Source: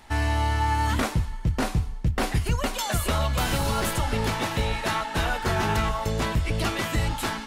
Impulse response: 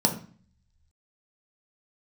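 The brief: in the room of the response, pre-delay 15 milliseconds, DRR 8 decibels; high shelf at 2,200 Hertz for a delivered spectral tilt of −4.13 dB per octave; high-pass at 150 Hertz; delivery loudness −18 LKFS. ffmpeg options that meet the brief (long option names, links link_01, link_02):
-filter_complex "[0:a]highpass=150,highshelf=frequency=2200:gain=6,asplit=2[link_01][link_02];[1:a]atrim=start_sample=2205,adelay=15[link_03];[link_02][link_03]afir=irnorm=-1:irlink=0,volume=-20dB[link_04];[link_01][link_04]amix=inputs=2:normalize=0,volume=6.5dB"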